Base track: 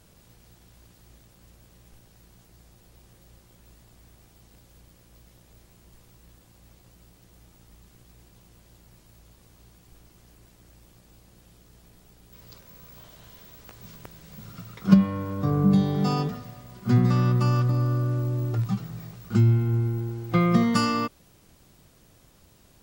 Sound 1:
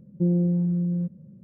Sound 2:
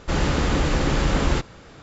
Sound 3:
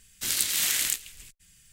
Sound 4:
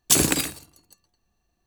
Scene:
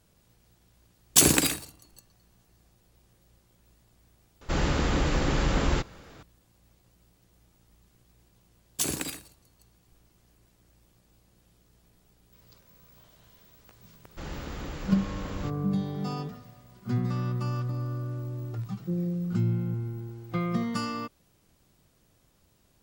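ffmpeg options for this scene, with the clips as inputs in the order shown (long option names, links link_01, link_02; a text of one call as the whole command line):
ffmpeg -i bed.wav -i cue0.wav -i cue1.wav -i cue2.wav -i cue3.wav -filter_complex "[4:a]asplit=2[link_01][link_02];[2:a]asplit=2[link_03][link_04];[0:a]volume=-8.5dB[link_05];[link_01]atrim=end=1.66,asetpts=PTS-STARTPTS,volume=-0.5dB,afade=type=in:duration=0.004:curve=hsin,afade=type=out:start_time=1.656:duration=0.004:curve=hsin,adelay=1060[link_06];[link_03]atrim=end=1.82,asetpts=PTS-STARTPTS,volume=-4.5dB,afade=type=in:duration=0.004:curve=hsin,afade=type=out:start_time=1.816:duration=0.004:curve=hsin,adelay=194481S[link_07];[link_02]atrim=end=1.66,asetpts=PTS-STARTPTS,volume=-11dB,afade=type=in:duration=0.004:curve=hsin,afade=type=out:start_time=1.656:duration=0.004:curve=hsin,adelay=8690[link_08];[link_04]atrim=end=1.82,asetpts=PTS-STARTPTS,volume=-16.5dB,afade=type=in:duration=0.004:curve=hsin,afade=type=out:start_time=1.816:duration=0.004:curve=hsin,adelay=14090[link_09];[1:a]atrim=end=1.43,asetpts=PTS-STARTPTS,volume=-8dB,afade=type=in:duration=0.004:curve=hsin,afade=type=out:start_time=1.426:duration=0.004:curve=hsin,adelay=18670[link_10];[link_05][link_06][link_07][link_08][link_09][link_10]amix=inputs=6:normalize=0" out.wav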